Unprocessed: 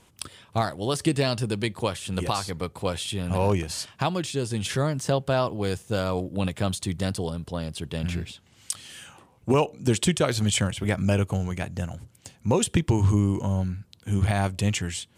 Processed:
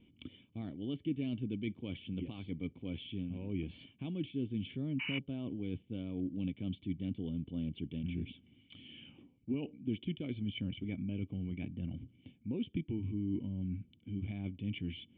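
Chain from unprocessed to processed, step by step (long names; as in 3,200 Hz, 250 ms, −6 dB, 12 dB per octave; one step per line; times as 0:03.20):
loose part that buzzes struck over −18 dBFS, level −33 dBFS
reversed playback
downward compressor, threshold −31 dBFS, peak gain reduction 14.5 dB
reversed playback
sound drawn into the spectrogram noise, 0:04.99–0:05.19, 880–3,000 Hz −28 dBFS
formant resonators in series i
level +6 dB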